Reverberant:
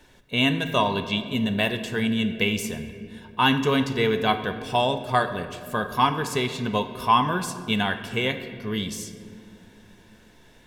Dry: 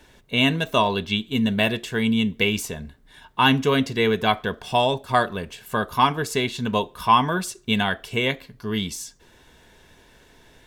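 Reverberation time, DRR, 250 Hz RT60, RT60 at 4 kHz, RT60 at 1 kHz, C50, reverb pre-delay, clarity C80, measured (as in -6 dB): 2.4 s, 8.5 dB, 3.6 s, 1.3 s, 1.9 s, 10.0 dB, 4 ms, 11.0 dB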